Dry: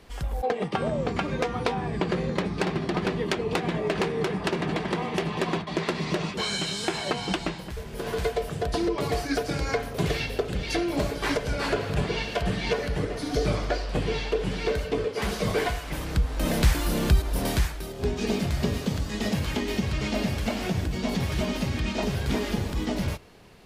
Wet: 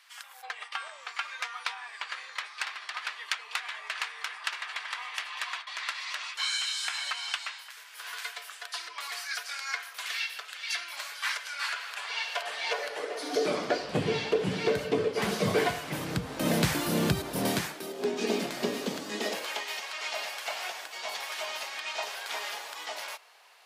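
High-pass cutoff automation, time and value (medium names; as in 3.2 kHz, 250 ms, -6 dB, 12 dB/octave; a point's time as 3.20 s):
high-pass 24 dB/octave
11.81 s 1.2 kHz
13.19 s 430 Hz
13.91 s 120 Hz
17.40 s 120 Hz
17.96 s 250 Hz
19.13 s 250 Hz
19.68 s 740 Hz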